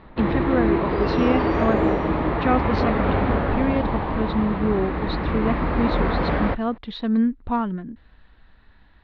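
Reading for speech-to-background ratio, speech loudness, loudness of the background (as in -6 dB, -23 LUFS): -2.0 dB, -25.5 LUFS, -23.5 LUFS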